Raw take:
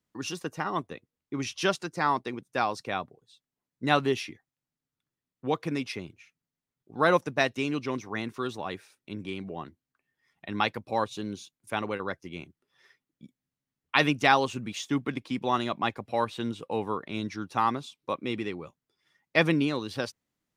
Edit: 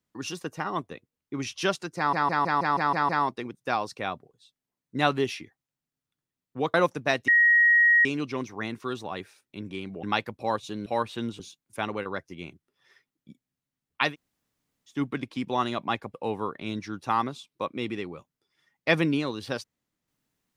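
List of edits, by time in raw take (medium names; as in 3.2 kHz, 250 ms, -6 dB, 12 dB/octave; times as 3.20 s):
1.97 s: stutter 0.16 s, 8 plays
5.62–7.05 s: delete
7.59 s: add tone 1.89 kHz -15.5 dBFS 0.77 s
9.57–10.51 s: delete
14.02–14.88 s: room tone, crossfade 0.16 s
16.08–16.62 s: move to 11.34 s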